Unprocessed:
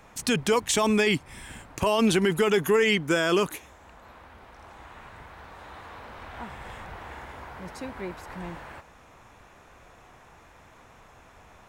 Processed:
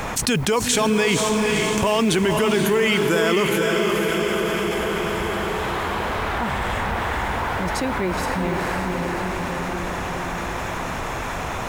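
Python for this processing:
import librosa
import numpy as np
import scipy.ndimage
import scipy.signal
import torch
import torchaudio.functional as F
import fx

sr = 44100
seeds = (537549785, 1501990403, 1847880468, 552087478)

p1 = fx.mod_noise(x, sr, seeds[0], snr_db=32)
p2 = p1 + fx.echo_diffused(p1, sr, ms=487, feedback_pct=55, wet_db=-5.0, dry=0)
y = fx.env_flatten(p2, sr, amount_pct=70)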